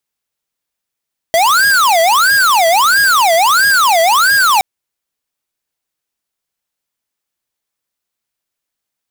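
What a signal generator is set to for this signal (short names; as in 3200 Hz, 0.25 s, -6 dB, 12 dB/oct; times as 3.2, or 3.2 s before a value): siren wail 654–1640 Hz 1.5/s square -10 dBFS 3.27 s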